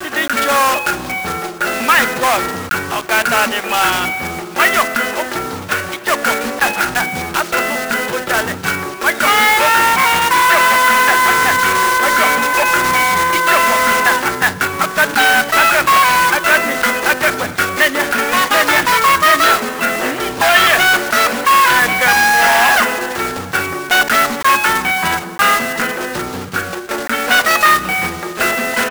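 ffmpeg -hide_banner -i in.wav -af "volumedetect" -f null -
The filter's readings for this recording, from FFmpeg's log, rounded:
mean_volume: -14.3 dB
max_volume: -2.2 dB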